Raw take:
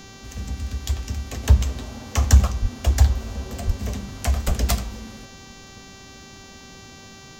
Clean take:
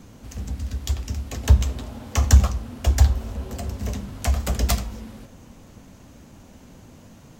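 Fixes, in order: de-hum 389.6 Hz, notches 18; 2.61–2.73 HPF 140 Hz 24 dB/oct; 3.66–3.78 HPF 140 Hz 24 dB/oct; 4.46–4.58 HPF 140 Hz 24 dB/oct

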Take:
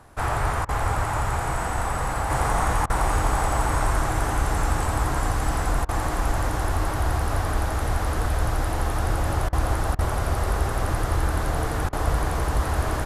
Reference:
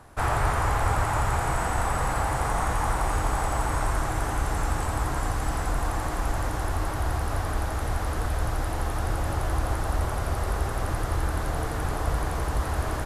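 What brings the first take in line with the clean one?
interpolate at 0.65/2.86/5.85/9.49/9.95/11.89, 37 ms; gain 0 dB, from 2.3 s -3.5 dB

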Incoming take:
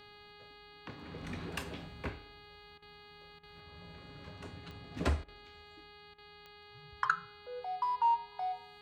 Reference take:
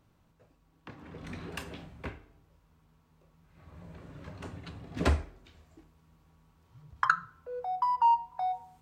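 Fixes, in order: de-click; de-hum 413.9 Hz, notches 11; interpolate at 2.78/3.39/5.24/6.14, 41 ms; gain correction +5 dB, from 3.6

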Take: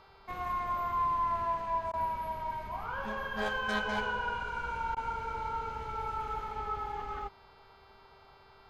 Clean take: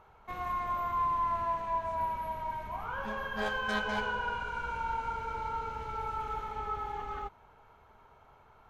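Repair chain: de-hum 391.4 Hz, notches 13; interpolate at 1.92/4.95, 14 ms

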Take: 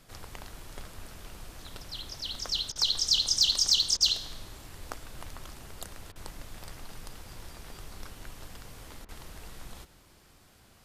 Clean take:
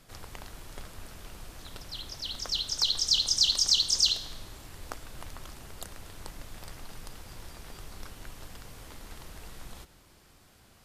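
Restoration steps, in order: clip repair -14.5 dBFS; interpolate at 2.72/3.97/6.12/9.05, 36 ms

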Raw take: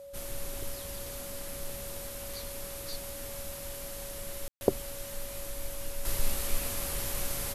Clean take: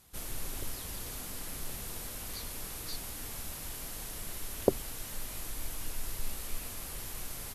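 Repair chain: notch 560 Hz, Q 30; room tone fill 4.48–4.61; gain 0 dB, from 6.05 s -7 dB

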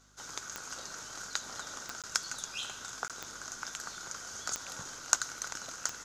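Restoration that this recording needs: de-click; de-hum 50.5 Hz, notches 5; interpolate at 2.02/3.08, 17 ms

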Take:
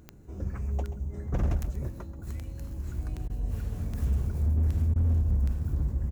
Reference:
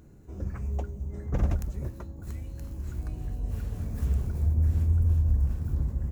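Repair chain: clip repair -21 dBFS; de-click; interpolate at 3.28/4.94, 17 ms; inverse comb 0.132 s -13.5 dB

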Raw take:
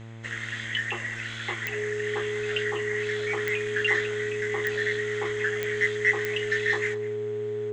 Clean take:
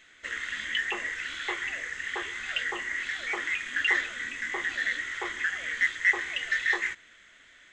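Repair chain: de-click; de-hum 113.2 Hz, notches 26; notch 420 Hz, Q 30; inverse comb 0.204 s -18 dB

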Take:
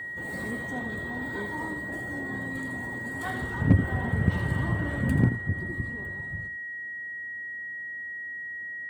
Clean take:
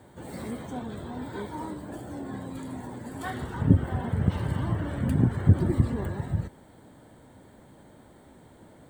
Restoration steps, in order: clip repair -10 dBFS; notch 1900 Hz, Q 30; inverse comb 83 ms -10.5 dB; gain 0 dB, from 5.29 s +11 dB

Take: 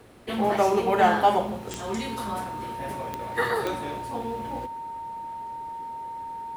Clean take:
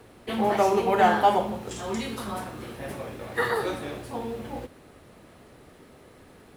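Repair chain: de-click; notch 920 Hz, Q 30

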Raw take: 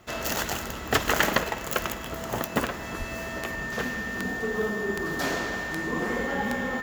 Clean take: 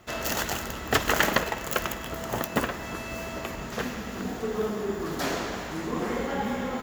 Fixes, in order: de-click; notch 1800 Hz, Q 30; 2.98–3.1 HPF 140 Hz 24 dB/oct

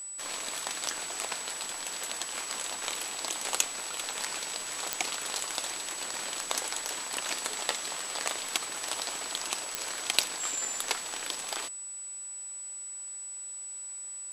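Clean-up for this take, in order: de-click; notch 7900 Hz, Q 30

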